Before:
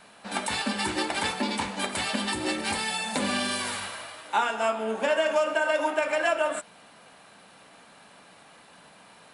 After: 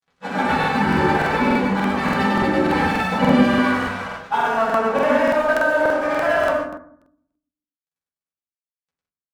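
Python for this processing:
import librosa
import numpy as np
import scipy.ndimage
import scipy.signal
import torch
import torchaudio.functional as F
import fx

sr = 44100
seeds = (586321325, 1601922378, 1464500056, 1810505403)

p1 = scipy.signal.sosfilt(scipy.signal.butter(2, 2100.0, 'lowpass', fs=sr, output='sos'), x)
p2 = fx.rider(p1, sr, range_db=3, speed_s=0.5)
p3 = p1 + (p2 * librosa.db_to_amplitude(1.0))
p4 = np.sign(p3) * np.maximum(np.abs(p3) - 10.0 ** (-38.5 / 20.0), 0.0)
p5 = fx.granulator(p4, sr, seeds[0], grain_ms=100.0, per_s=20.0, spray_ms=100.0, spread_st=0)
p6 = 10.0 ** (-17.0 / 20.0) * np.tanh(p5 / 10.0 ** (-17.0 / 20.0))
p7 = p6 + fx.echo_single(p6, sr, ms=103, db=-3.0, dry=0)
p8 = fx.rev_fdn(p7, sr, rt60_s=0.66, lf_ratio=1.5, hf_ratio=0.45, size_ms=36.0, drr_db=-8.5)
p9 = fx.buffer_crackle(p8, sr, first_s=0.59, period_s=0.29, block=2048, kind='repeat')
y = p9 * librosa.db_to_amplitude(-3.0)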